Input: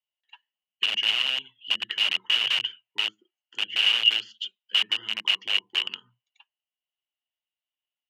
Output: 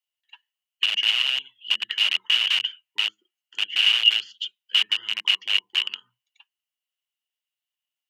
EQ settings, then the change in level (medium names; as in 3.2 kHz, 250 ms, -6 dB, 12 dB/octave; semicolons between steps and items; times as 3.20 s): tilt shelf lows -7 dB, about 730 Hz; -3.5 dB